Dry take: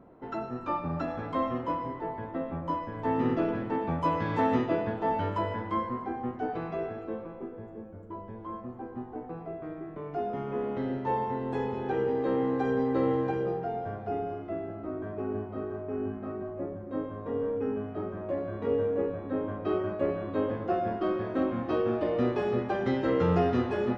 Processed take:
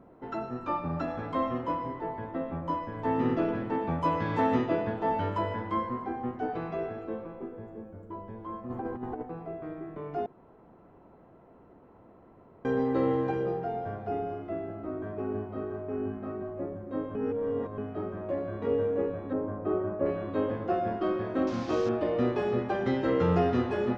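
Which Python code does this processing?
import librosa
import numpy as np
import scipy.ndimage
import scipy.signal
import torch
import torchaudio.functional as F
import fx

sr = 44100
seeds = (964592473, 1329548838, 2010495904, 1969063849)

y = fx.over_compress(x, sr, threshold_db=-40.0, ratio=-0.5, at=(8.69, 9.21), fade=0.02)
y = fx.lowpass(y, sr, hz=1300.0, slope=12, at=(19.33, 20.06))
y = fx.delta_mod(y, sr, bps=32000, step_db=-37.5, at=(21.47, 21.89))
y = fx.edit(y, sr, fx.room_tone_fill(start_s=10.26, length_s=2.39),
    fx.reverse_span(start_s=17.15, length_s=0.63), tone=tone)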